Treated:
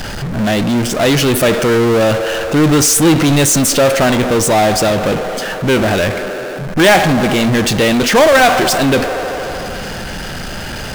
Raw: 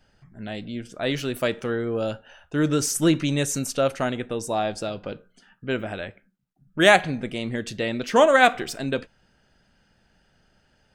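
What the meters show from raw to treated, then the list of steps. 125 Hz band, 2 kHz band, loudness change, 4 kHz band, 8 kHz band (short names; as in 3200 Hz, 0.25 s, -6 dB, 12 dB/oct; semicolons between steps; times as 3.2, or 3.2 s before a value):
+14.0 dB, +10.0 dB, +11.0 dB, +13.0 dB, +16.0 dB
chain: band-limited delay 76 ms, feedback 77%, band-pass 770 Hz, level -19 dB; power-law curve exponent 0.35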